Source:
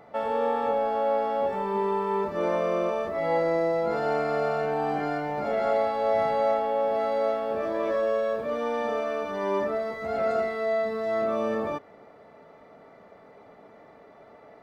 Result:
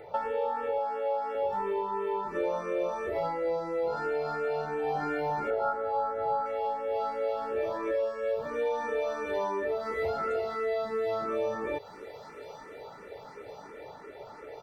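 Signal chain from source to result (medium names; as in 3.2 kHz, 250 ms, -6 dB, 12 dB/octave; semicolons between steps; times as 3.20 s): comb 2.2 ms, depth 59%; gain riding; on a send: feedback echo behind a high-pass 1060 ms, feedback 71%, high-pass 3.9 kHz, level -13.5 dB; on the sum: compression 6:1, threshold -31 dBFS, peak gain reduction 11.5 dB; 0.78–1.35 s: high-pass 280 Hz 12 dB/octave; 5.50–6.46 s: resonant high shelf 1.8 kHz -7.5 dB, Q 3; barber-pole phaser +2.9 Hz; trim +5.5 dB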